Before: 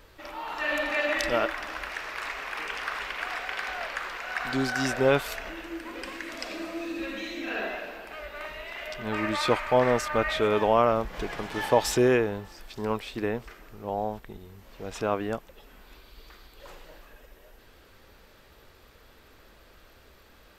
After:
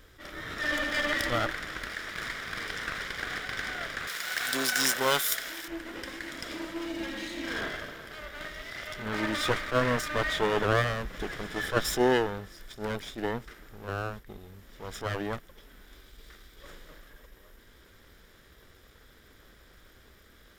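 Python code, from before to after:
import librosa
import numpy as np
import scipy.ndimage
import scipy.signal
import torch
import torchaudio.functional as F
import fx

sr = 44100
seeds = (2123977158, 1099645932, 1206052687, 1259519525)

y = fx.lower_of_two(x, sr, delay_ms=0.57)
y = fx.riaa(y, sr, side='recording', at=(4.07, 5.68))
y = fx.attack_slew(y, sr, db_per_s=230.0)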